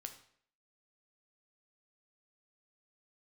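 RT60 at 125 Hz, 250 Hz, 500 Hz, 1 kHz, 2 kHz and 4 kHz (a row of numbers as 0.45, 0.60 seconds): 0.55, 0.60, 0.60, 0.60, 0.60, 0.50 seconds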